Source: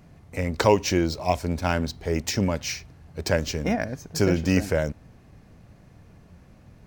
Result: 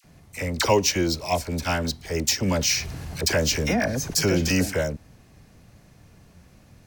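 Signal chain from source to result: treble shelf 2.9 kHz +10.5 dB; phase dispersion lows, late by 45 ms, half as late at 1.1 kHz; 2.48–4.52 s: level flattener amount 50%; trim -1.5 dB

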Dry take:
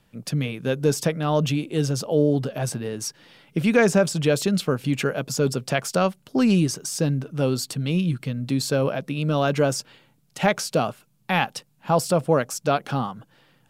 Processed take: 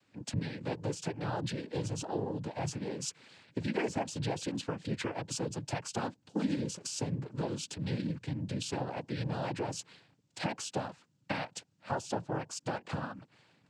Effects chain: compression 4:1, threshold -26 dBFS, peak gain reduction 11 dB; noise-vocoded speech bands 8; trim -6 dB

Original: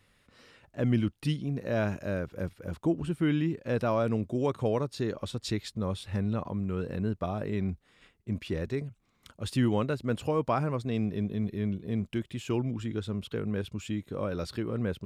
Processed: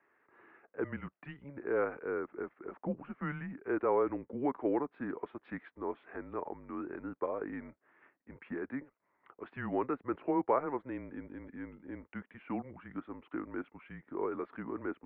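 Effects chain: mistuned SSB -140 Hz 440–2100 Hz

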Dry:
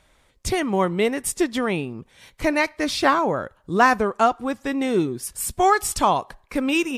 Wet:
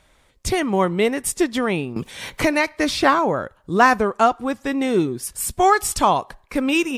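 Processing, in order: 1.96–3.04 s: three bands compressed up and down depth 70%; trim +2 dB

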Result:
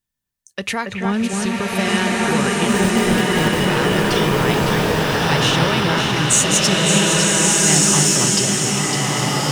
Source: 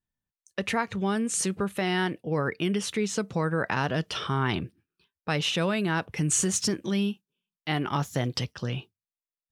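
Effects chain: 1.05–1.46 s: tone controls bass +10 dB, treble -13 dB; in parallel at -11 dB: saturation -26 dBFS, distortion -10 dB; on the sum: treble shelf 2.6 kHz +8.5 dB; 2.68–3.67 s: sample-rate reducer 1.4 kHz, jitter 0%; echo whose repeats swap between lows and highs 278 ms, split 2.4 kHz, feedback 72%, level -3.5 dB; swelling reverb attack 1500 ms, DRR -5 dB; trim +1 dB

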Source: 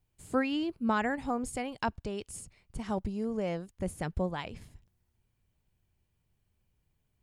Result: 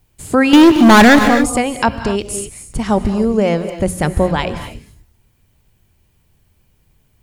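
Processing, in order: treble shelf 10 kHz +3.5 dB; hum notches 60/120/180 Hz; 0.53–1.19 s: waveshaping leveller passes 5; gated-style reverb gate 290 ms rising, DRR 10 dB; loudness maximiser +19 dB; trim -1 dB

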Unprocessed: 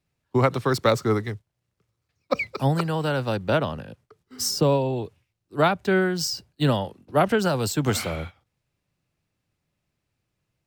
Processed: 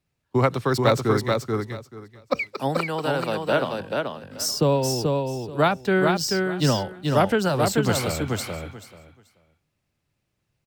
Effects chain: 2.41–3.81 s: high-pass 230 Hz 12 dB/octave; on a send: feedback delay 434 ms, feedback 18%, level -3.5 dB

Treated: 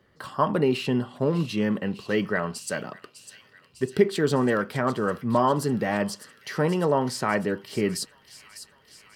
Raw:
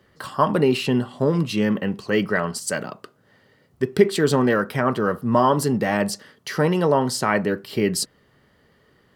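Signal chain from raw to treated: treble shelf 5.1 kHz -4.5 dB; feedback echo behind a high-pass 602 ms, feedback 69%, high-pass 3.1 kHz, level -10.5 dB; trim -4 dB

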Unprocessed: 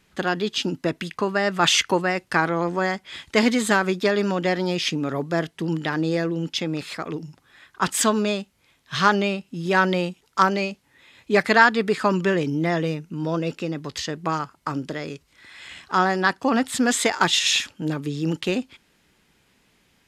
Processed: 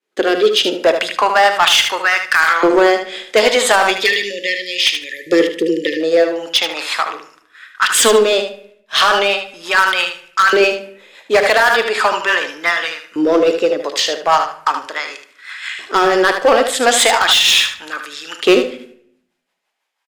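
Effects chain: high-pass 220 Hz 12 dB/octave; expander -49 dBFS; LFO high-pass saw up 0.38 Hz 370–1600 Hz; dynamic bell 3.2 kHz, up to +6 dB, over -38 dBFS, Q 2.1; rotary cabinet horn 0.7 Hz, later 6 Hz, at 7.86 s; spectral selection erased 3.85–6.01 s, 570–1700 Hz; in parallel at -5 dB: wavefolder -20.5 dBFS; on the sum: feedback delay 75 ms, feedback 19%, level -8 dB; on a send at -12 dB: reverberation RT60 0.70 s, pre-delay 4 ms; on the sum: loudness maximiser +9.5 dB; trim -1 dB

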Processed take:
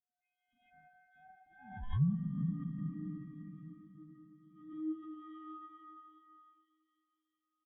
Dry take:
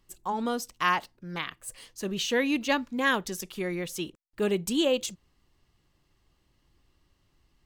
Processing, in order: partials quantised in pitch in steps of 6 st; Doppler pass-by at 1.85 s, 36 m/s, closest 11 m; plate-style reverb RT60 4 s, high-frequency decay 0.7×, DRR -1 dB; de-esser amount 90%; frequency inversion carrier 3.5 kHz; band-stop 2.3 kHz, Q 7.8; peak limiter -25 dBFS, peak gain reduction 7 dB; treble shelf 2.5 kHz +11 dB; static phaser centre 1.2 kHz, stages 4; on a send: feedback delay 417 ms, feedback 30%, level -11 dB; on the sum: low-pass sweep 200 Hz -> 930 Hz, 4.65–5.37 s; swell ahead of each attack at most 77 dB/s; trim +3.5 dB

